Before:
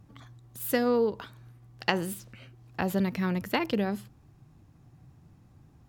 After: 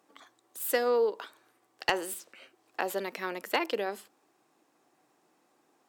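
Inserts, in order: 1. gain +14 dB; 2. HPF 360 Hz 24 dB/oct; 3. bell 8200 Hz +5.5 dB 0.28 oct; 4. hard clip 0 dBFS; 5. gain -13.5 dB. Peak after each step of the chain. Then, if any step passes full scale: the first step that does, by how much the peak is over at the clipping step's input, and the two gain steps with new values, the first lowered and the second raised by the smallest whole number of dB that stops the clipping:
+8.0, +9.5, +9.5, 0.0, -13.5 dBFS; step 1, 9.5 dB; step 1 +4 dB, step 5 -3.5 dB

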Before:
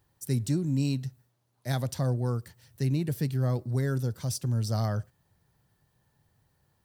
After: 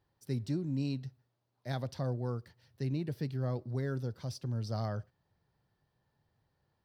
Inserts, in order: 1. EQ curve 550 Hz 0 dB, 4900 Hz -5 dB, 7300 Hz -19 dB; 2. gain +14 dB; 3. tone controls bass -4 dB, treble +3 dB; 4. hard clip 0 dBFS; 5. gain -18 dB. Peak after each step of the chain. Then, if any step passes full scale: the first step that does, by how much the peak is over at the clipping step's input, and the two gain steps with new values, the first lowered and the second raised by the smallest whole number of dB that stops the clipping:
-16.5, -2.5, -4.5, -4.5, -22.5 dBFS; no overload

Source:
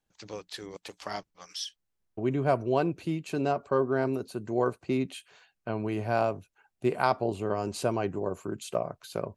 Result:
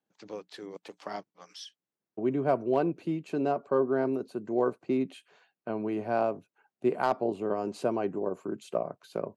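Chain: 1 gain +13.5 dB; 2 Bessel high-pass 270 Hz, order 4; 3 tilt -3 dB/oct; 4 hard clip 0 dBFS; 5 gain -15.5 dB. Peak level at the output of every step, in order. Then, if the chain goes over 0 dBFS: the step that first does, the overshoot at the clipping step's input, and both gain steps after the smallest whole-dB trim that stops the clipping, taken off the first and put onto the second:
+3.0, +3.0, +3.0, 0.0, -15.5 dBFS; step 1, 3.0 dB; step 1 +10.5 dB, step 5 -12.5 dB

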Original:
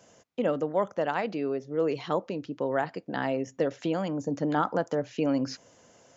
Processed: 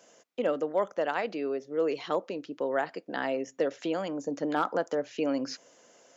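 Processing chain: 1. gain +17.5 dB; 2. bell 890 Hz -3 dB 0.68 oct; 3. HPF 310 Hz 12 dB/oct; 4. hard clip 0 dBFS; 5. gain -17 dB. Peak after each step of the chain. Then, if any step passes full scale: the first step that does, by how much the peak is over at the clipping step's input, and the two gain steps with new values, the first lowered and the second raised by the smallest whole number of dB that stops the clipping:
+3.0, +2.0, +3.0, 0.0, -17.0 dBFS; step 1, 3.0 dB; step 1 +14.5 dB, step 5 -14 dB

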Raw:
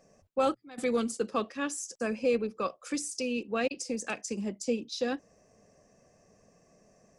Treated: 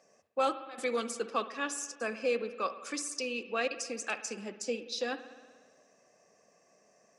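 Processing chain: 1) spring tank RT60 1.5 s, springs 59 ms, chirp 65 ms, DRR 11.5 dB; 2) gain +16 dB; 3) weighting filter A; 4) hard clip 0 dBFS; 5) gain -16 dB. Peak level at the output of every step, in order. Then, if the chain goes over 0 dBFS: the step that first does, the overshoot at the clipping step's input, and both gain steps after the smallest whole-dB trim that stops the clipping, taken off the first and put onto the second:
-16.5, -0.5, -2.0, -2.0, -18.0 dBFS; no overload

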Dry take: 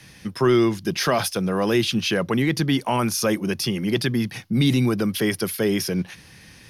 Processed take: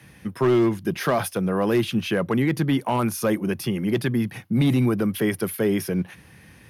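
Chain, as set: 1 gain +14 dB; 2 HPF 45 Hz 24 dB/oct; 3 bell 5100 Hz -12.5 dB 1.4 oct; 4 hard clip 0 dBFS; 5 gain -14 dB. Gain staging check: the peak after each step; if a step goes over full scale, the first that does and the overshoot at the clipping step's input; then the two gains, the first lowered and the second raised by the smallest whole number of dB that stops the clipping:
+5.0, +6.0, +5.5, 0.0, -14.0 dBFS; step 1, 5.5 dB; step 1 +8 dB, step 5 -8 dB

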